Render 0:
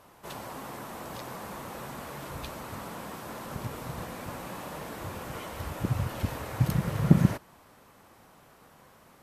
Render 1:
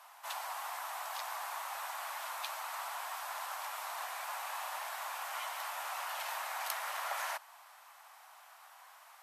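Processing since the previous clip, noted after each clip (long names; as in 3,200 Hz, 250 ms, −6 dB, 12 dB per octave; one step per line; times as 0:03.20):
Butterworth high-pass 700 Hz 48 dB per octave
level +2 dB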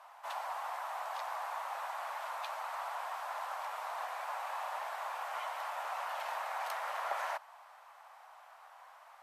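spectral tilt −4 dB per octave
level +2 dB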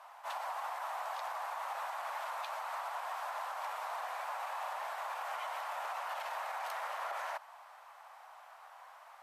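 brickwall limiter −32.5 dBFS, peak gain reduction 8.5 dB
level that may rise only so fast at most 320 dB per second
level +1.5 dB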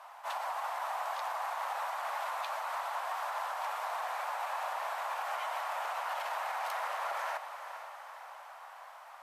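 feedback delay with all-pass diffusion 451 ms, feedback 57%, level −10 dB
level +3 dB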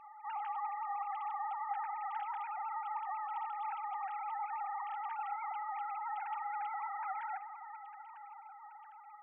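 three sine waves on the formant tracks
convolution reverb RT60 1.4 s, pre-delay 39 ms, DRR 19 dB
level −3 dB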